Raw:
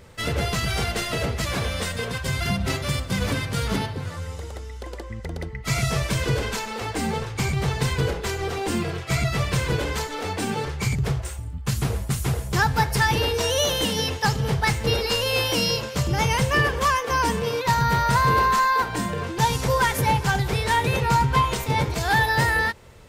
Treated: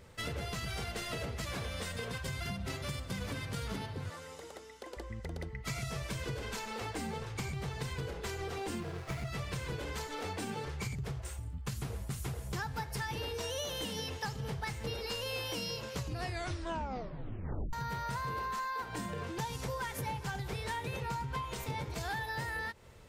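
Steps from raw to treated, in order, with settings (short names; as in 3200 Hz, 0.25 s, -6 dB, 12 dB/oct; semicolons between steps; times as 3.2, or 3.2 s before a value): 4.1–4.97 HPF 250 Hz 12 dB/oct; compressor, threshold -27 dBFS, peak gain reduction 11.5 dB; 8.8–9.29 running maximum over 9 samples; 15.93 tape stop 1.80 s; gain -8 dB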